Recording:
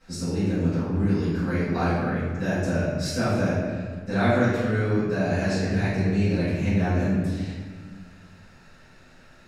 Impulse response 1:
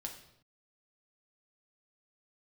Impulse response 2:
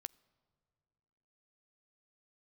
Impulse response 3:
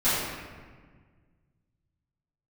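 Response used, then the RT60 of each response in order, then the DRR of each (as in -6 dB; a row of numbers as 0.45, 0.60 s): 3; 0.75, 2.2, 1.6 s; 1.5, 20.0, -16.0 dB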